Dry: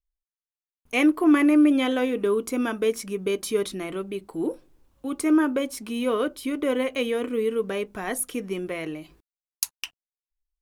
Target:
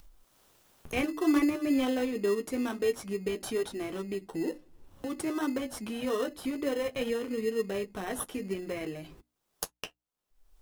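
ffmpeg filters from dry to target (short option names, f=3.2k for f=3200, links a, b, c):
-filter_complex "[0:a]flanger=delay=7.4:depth=5:regen=-29:speed=0.55:shape=triangular,acompressor=mode=upward:threshold=-27dB:ratio=2.5,bandreject=f=60:t=h:w=6,bandreject=f=120:t=h:w=6,bandreject=f=180:t=h:w=6,bandreject=f=240:t=h:w=6,bandreject=f=300:t=h:w=6,asplit=2[a][b];[b]acrusher=samples=19:mix=1:aa=0.000001,volume=-3.5dB[c];[a][c]amix=inputs=2:normalize=0,volume=-6.5dB"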